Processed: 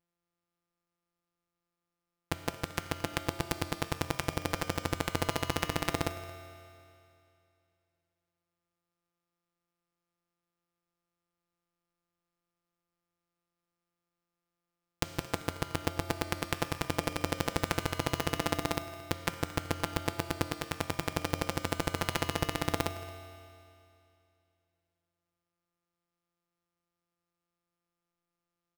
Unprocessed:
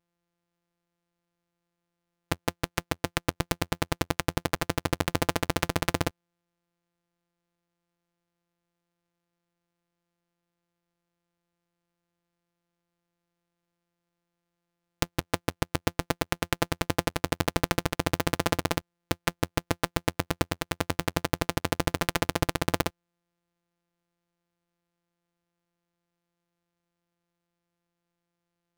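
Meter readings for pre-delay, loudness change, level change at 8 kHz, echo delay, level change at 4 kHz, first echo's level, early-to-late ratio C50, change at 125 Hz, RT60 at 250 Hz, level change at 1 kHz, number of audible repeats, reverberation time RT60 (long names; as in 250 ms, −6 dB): 5 ms, −4.5 dB, −4.5 dB, 223 ms, −4.0 dB, −19.0 dB, 9.5 dB, −4.5 dB, 2.6 s, −4.0 dB, 1, 2.6 s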